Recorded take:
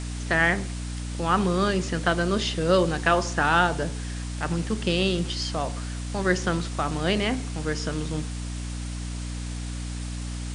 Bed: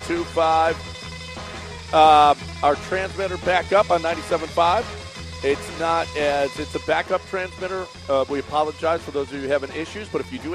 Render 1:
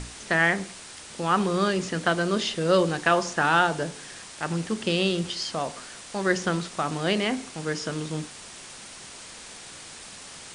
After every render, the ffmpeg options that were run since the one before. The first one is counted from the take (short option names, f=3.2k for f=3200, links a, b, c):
-af "bandreject=f=60:t=h:w=6,bandreject=f=120:t=h:w=6,bandreject=f=180:t=h:w=6,bandreject=f=240:t=h:w=6,bandreject=f=300:t=h:w=6"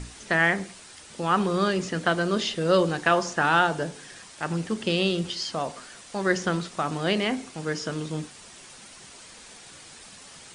-af "afftdn=nr=6:nf=-44"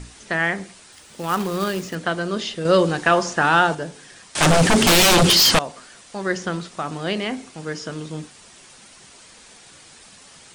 -filter_complex "[0:a]asettb=1/sr,asplit=3[a][b][c];[a]atrim=end=0.924[d];[b]atrim=start=0.92:end=1.95,asetpts=PTS-STARTPTS,afade=t=in:d=0.004:c=qsin,afade=t=out:st=1.026:d=0.004:c=qsin,acrusher=bits=3:mode=log:mix=0:aa=0.000001[e];[c]atrim=start=1.946[f];[d][e]acrossfade=d=0.004:c1=hsin:c2=qsin[g];[g][f]acrossfade=d=0.004:c1=qsin:c2=hsin,asettb=1/sr,asplit=3[h][i][j];[h]atrim=end=2.654[k];[i]atrim=start=2.65:end=3.75,asetpts=PTS-STARTPTS,afade=t=in:d=0.004:c=qsin,afade=t=out:st=1.096:d=0.004:c=qsin,acontrast=24[l];[j]atrim=start=3.746[m];[k][l]acrossfade=d=0.004:c1=hsin:c2=qsin[n];[n][m]acrossfade=d=0.004:c1=qsin:c2=hsin,asettb=1/sr,asplit=3[o][p][q];[o]atrim=end=4.354[r];[p]atrim=start=4.35:end=5.59,asetpts=PTS-STARTPTS,afade=t=in:d=0.004:c=qsin,afade=t=out:st=1.236:d=0.004:c=qsin,aeval=exprs='0.299*sin(PI/2*8.91*val(0)/0.299)':c=same[s];[q]atrim=start=5.586[t];[r][s]acrossfade=d=0.004:c1=hsin:c2=qsin[u];[u][t]acrossfade=d=0.004:c1=qsin:c2=hsin"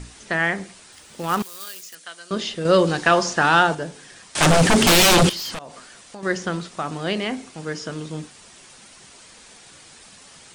-filter_complex "[0:a]asettb=1/sr,asplit=3[a][b][c];[a]atrim=end=1.424[d];[b]atrim=start=1.42:end=2.31,asetpts=PTS-STARTPTS,afade=t=in:d=0.004:c=qsin,afade=t=out:st=0.886:d=0.004:c=qsin,aderivative[e];[c]atrim=start=2.306[f];[d][e]acrossfade=d=0.004:c1=hsin:c2=qsin[g];[g][f]acrossfade=d=0.004:c1=qsin:c2=hsin,asettb=1/sr,asplit=3[h][i][j];[h]atrim=end=2.874[k];[i]atrim=start=2.87:end=3.63,asetpts=PTS-STARTPTS,afade=t=in:d=0.004:c=qsin,afade=t=out:st=0.756:d=0.004:c=qsin,equalizer=f=4.7k:t=o:w=1:g=4.5[l];[j]atrim=start=3.626[m];[k][l]acrossfade=d=0.004:c1=hsin:c2=qsin[n];[n][m]acrossfade=d=0.004:c1=qsin:c2=hsin,asettb=1/sr,asplit=3[o][p][q];[o]atrim=end=5.294[r];[p]atrim=start=5.29:end=6.23,asetpts=PTS-STARTPTS,afade=t=in:d=0.004:c=qsin,afade=t=out:st=0.936:d=0.004:c=qsin,acompressor=threshold=-35dB:ratio=3:attack=3.2:release=140:knee=1:detection=peak[s];[q]atrim=start=6.226[t];[r][s]acrossfade=d=0.004:c1=hsin:c2=qsin[u];[u][t]acrossfade=d=0.004:c1=qsin:c2=hsin"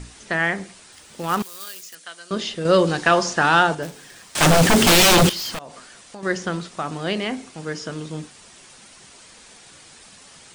-filter_complex "[0:a]asplit=3[a][b][c];[a]afade=t=out:st=3.82:d=0.02[d];[b]acrusher=bits=2:mode=log:mix=0:aa=0.000001,afade=t=in:st=3.82:d=0.02,afade=t=out:st=5.58:d=0.02[e];[c]afade=t=in:st=5.58:d=0.02[f];[d][e][f]amix=inputs=3:normalize=0"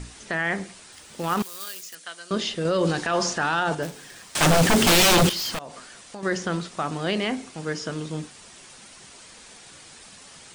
-af "alimiter=limit=-14dB:level=0:latency=1:release=14"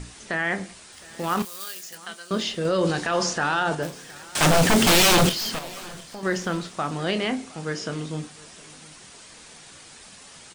-filter_complex "[0:a]asplit=2[a][b];[b]adelay=27,volume=-12dB[c];[a][c]amix=inputs=2:normalize=0,aecho=1:1:714|1428:0.075|0.0217"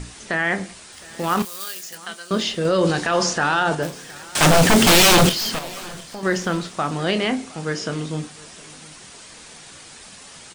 -af "volume=4dB"